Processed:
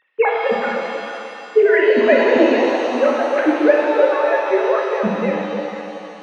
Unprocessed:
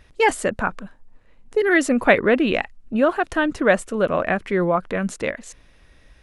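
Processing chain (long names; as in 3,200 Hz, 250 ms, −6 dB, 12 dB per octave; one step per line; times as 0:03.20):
three sine waves on the formant tracks
echo through a band-pass that steps 150 ms, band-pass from 230 Hz, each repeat 1.4 octaves, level −2 dB
reverb with rising layers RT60 2.5 s, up +7 semitones, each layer −8 dB, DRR −1 dB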